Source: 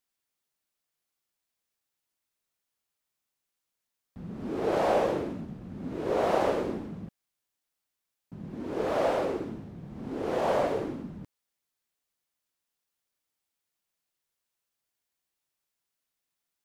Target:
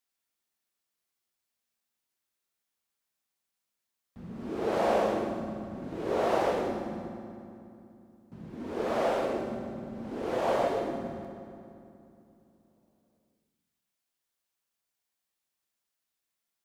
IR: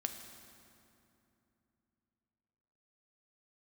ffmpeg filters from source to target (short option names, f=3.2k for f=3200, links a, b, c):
-filter_complex "[0:a]lowshelf=f=330:g=-4[a];[1:a]atrim=start_sample=2205[b];[a][b]afir=irnorm=-1:irlink=0"